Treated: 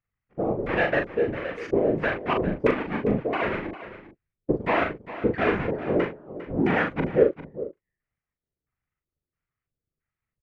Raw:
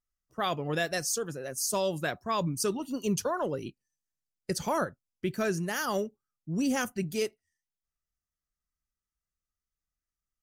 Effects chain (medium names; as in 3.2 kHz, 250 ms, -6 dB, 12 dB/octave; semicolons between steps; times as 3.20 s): square wave that keeps the level; tone controls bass -4 dB, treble -14 dB; LFO low-pass square 1.5 Hz 420–2200 Hz; whisper effect; doubling 40 ms -5 dB; on a send: delay 402 ms -14 dB